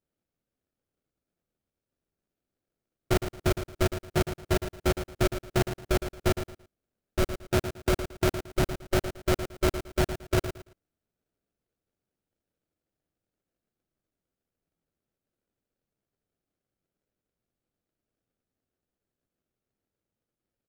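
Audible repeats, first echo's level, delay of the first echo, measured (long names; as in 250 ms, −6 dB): 3, −10.0 dB, 112 ms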